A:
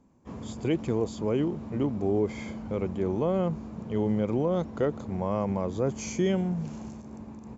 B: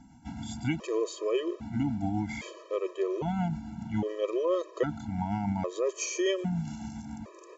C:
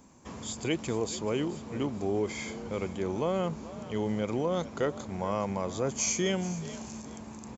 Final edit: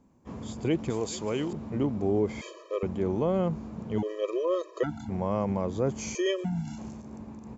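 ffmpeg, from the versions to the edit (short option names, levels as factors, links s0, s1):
-filter_complex "[1:a]asplit=3[s0][s1][s2];[0:a]asplit=5[s3][s4][s5][s6][s7];[s3]atrim=end=0.902[s8];[2:a]atrim=start=0.898:end=1.532[s9];[s4]atrim=start=1.528:end=2.412[s10];[s0]atrim=start=2.408:end=2.832[s11];[s5]atrim=start=2.828:end=3.982[s12];[s1]atrim=start=3.978:end=5.092[s13];[s6]atrim=start=5.088:end=6.152[s14];[s2]atrim=start=6.148:end=6.782[s15];[s7]atrim=start=6.778[s16];[s8][s9]acrossfade=d=0.004:c1=hsin:c2=hsin[s17];[s17][s10]acrossfade=d=0.004:c1=hsin:c2=hsin[s18];[s18][s11]acrossfade=d=0.004:c1=hsin:c2=hsin[s19];[s19][s12]acrossfade=d=0.004:c1=hsin:c2=hsin[s20];[s20][s13]acrossfade=d=0.004:c1=hsin:c2=hsin[s21];[s21][s14]acrossfade=d=0.004:c1=hsin:c2=hsin[s22];[s22][s15]acrossfade=d=0.004:c1=hsin:c2=hsin[s23];[s23][s16]acrossfade=d=0.004:c1=hsin:c2=hsin"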